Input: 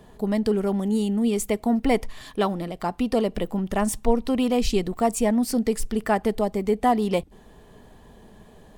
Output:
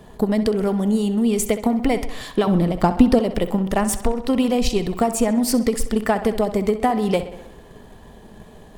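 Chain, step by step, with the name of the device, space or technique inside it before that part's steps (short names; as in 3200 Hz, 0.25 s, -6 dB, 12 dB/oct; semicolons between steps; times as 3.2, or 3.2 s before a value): drum-bus smash (transient shaper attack +9 dB, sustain +5 dB; compressor, threshold -17 dBFS, peak gain reduction 11.5 dB; soft clip -10.5 dBFS, distortion -21 dB); 2.47–3.19 low shelf 380 Hz +10 dB; tape echo 64 ms, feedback 66%, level -12 dB, low-pass 5600 Hz; gain +3.5 dB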